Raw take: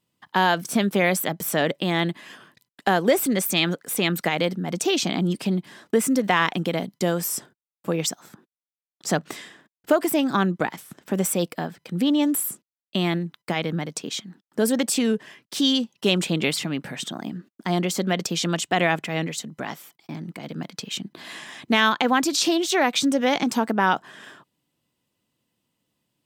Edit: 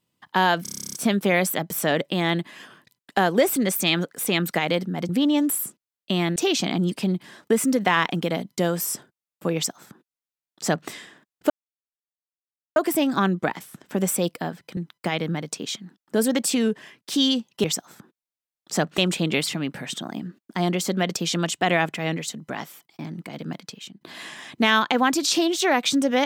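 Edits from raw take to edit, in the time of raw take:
0.63 stutter 0.03 s, 11 plays
7.98–9.32 copy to 16.08
9.93 insert silence 1.26 s
11.94–13.21 move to 4.79
20.65–21.11 fade out quadratic, to -12.5 dB

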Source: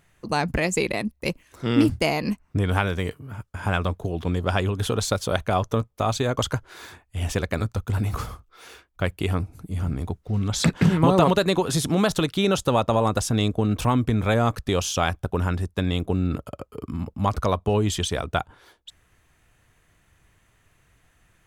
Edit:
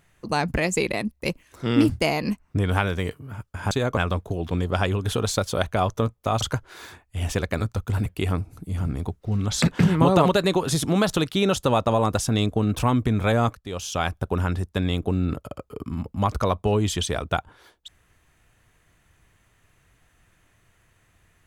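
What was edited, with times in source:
6.15–6.41 move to 3.71
8.06–9.08 cut
14.57–15.18 fade in, from -21 dB

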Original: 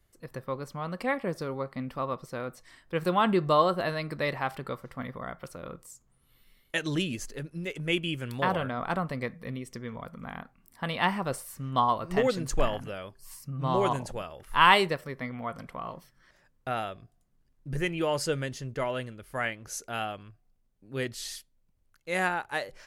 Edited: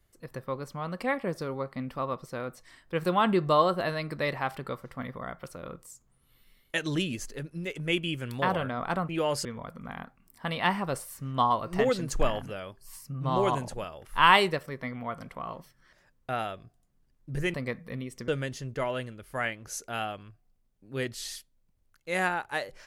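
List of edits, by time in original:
9.09–9.83 swap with 17.92–18.28

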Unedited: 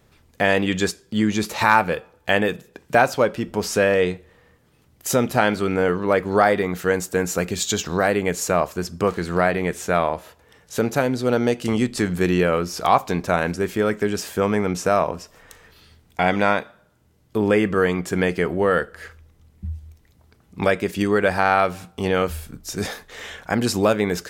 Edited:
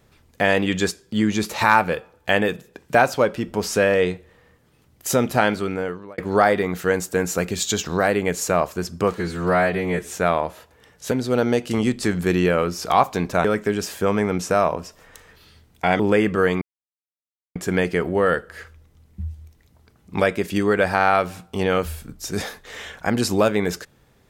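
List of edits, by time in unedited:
5.45–6.18 fade out
9.15–9.78 stretch 1.5×
10.8–11.06 cut
13.39–13.8 cut
16.35–17.38 cut
18 insert silence 0.94 s

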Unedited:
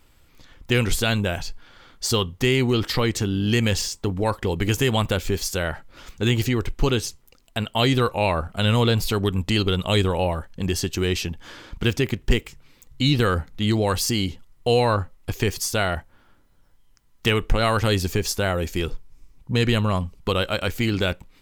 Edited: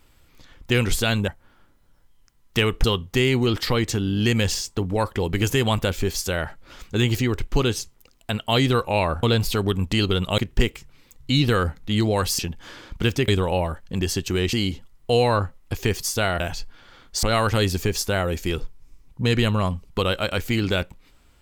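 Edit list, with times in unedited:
1.28–2.11 swap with 15.97–17.53
8.5–8.8 cut
9.95–11.2 swap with 12.09–14.1

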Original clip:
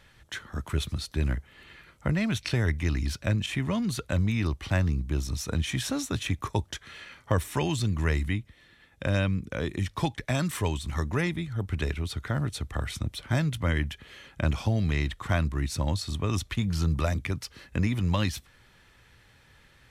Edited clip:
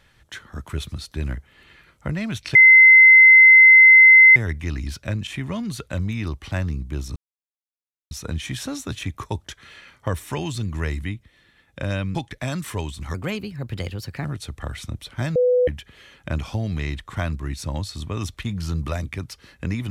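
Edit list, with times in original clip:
2.55 add tone 2060 Hz -6 dBFS 1.81 s
5.35 insert silence 0.95 s
9.39–10.02 cut
11.01–12.37 speed 123%
13.48–13.8 bleep 497 Hz -14 dBFS

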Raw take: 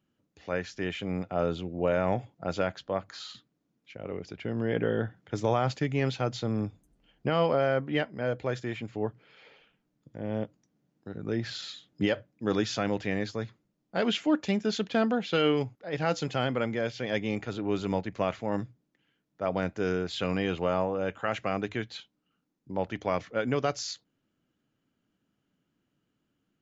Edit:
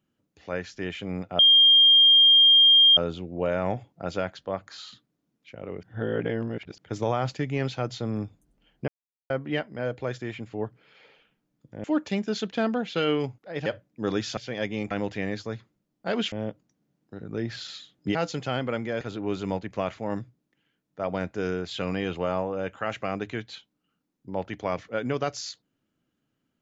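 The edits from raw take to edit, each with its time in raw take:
1.39 add tone 3210 Hz -12.5 dBFS 1.58 s
4.25–5.2 reverse
7.3–7.72 mute
10.26–12.09 swap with 14.21–16.03
16.89–17.43 move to 12.8

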